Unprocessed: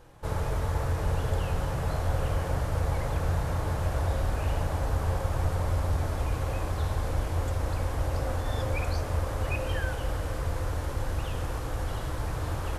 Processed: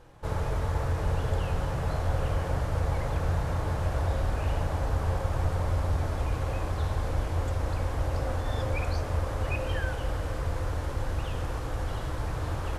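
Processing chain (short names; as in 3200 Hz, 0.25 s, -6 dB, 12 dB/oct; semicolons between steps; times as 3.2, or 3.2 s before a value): high shelf 10000 Hz -9.5 dB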